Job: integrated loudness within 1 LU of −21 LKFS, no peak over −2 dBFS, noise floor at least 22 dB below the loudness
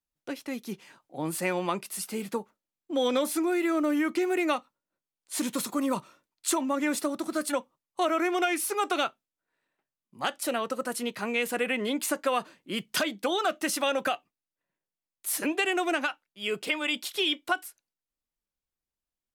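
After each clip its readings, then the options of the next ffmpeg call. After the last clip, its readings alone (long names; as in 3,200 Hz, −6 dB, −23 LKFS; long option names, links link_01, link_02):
integrated loudness −29.5 LKFS; sample peak −13.5 dBFS; target loudness −21.0 LKFS
→ -af "volume=8.5dB"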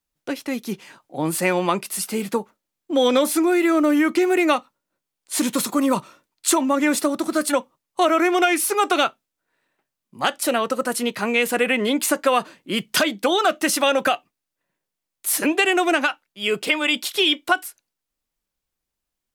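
integrated loudness −21.0 LKFS; sample peak −5.0 dBFS; background noise floor −83 dBFS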